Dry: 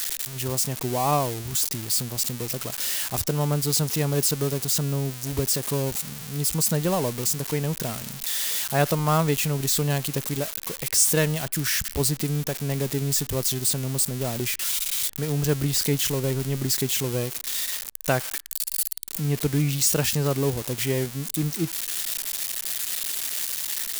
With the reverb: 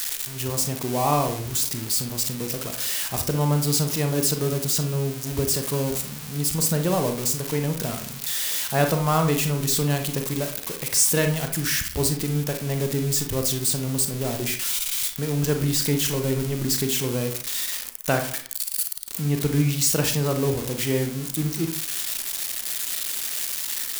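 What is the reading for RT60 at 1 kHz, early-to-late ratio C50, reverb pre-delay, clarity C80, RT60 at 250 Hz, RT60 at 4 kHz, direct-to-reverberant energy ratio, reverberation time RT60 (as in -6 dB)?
0.50 s, 8.5 dB, 32 ms, 13.5 dB, 0.55 s, 0.30 s, 5.0 dB, 0.50 s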